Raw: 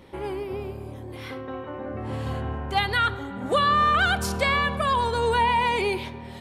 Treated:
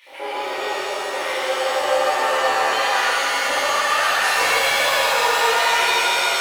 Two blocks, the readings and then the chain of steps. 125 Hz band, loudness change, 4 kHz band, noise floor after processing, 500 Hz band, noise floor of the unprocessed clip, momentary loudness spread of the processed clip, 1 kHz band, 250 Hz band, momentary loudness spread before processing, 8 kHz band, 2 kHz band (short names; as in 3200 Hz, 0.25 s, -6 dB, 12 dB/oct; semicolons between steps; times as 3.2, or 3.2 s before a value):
under -20 dB, +5.5 dB, +10.0 dB, -27 dBFS, +6.0 dB, -39 dBFS, 8 LU, +4.5 dB, -6.5 dB, 16 LU, +16.0 dB, +8.5 dB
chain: HPF 330 Hz 12 dB/oct; compressor 10:1, threshold -32 dBFS, peak gain reduction 14.5 dB; crackle 85/s -46 dBFS; flange 0.35 Hz, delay 3.3 ms, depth 3.1 ms, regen -51%; LFO high-pass square 7.7 Hz 590–2300 Hz; shimmer reverb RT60 3.7 s, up +7 st, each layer -2 dB, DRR -10.5 dB; gain +6.5 dB